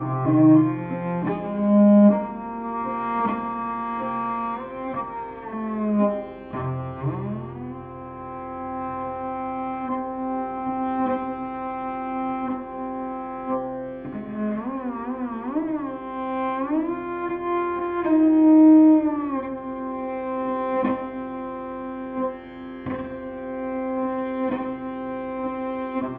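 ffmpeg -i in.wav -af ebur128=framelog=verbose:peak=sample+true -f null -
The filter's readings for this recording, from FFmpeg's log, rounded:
Integrated loudness:
  I:         -24.0 LUFS
  Threshold: -34.2 LUFS
Loudness range:
  LRA:        10.9 LU
  Threshold: -44.6 LUFS
  LRA low:   -30.0 LUFS
  LRA high:  -19.1 LUFS
Sample peak:
  Peak:       -5.5 dBFS
True peak:
  Peak:       -5.5 dBFS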